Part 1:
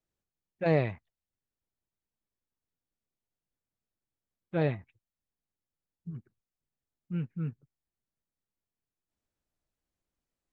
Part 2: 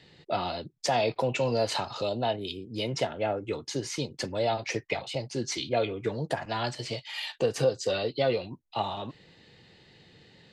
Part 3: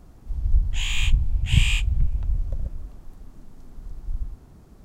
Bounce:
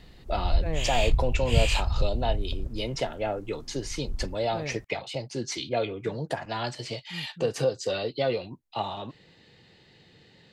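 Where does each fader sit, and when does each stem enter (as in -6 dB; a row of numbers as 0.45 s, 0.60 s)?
-8.0 dB, -0.5 dB, -4.0 dB; 0.00 s, 0.00 s, 0.00 s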